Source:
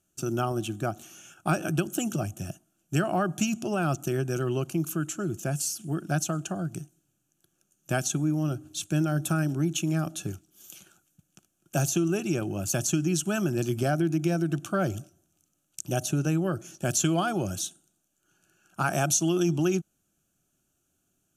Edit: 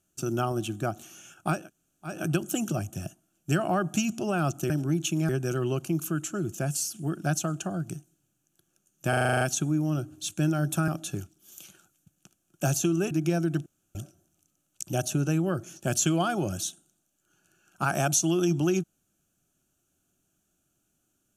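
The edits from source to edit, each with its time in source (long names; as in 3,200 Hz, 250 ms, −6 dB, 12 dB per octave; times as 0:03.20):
0:01.58: splice in room tone 0.56 s, crossfade 0.24 s
0:07.94: stutter 0.04 s, 9 plays
0:09.41–0:10.00: move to 0:04.14
0:12.23–0:14.09: remove
0:14.64–0:14.93: fill with room tone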